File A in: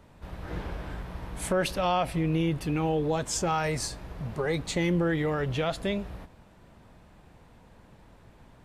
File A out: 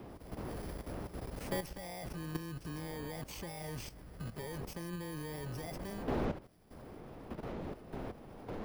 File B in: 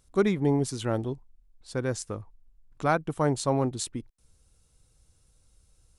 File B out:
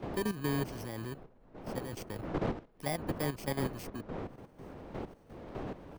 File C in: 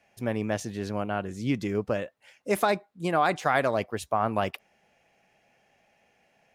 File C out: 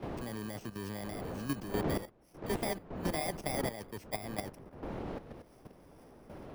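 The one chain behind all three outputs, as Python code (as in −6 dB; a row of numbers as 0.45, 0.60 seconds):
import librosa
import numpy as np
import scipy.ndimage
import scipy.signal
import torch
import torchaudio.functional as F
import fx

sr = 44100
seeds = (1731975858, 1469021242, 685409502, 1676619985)

y = fx.bit_reversed(x, sr, seeds[0], block=32)
y = fx.dmg_wind(y, sr, seeds[1], corner_hz=480.0, level_db=-33.0)
y = fx.level_steps(y, sr, step_db=12)
y = fx.high_shelf(y, sr, hz=7600.0, db=-10.0)
y = fx.band_squash(y, sr, depth_pct=40)
y = y * 10.0 ** (-5.5 / 20.0)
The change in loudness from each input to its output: −13.5, −9.5, −10.0 LU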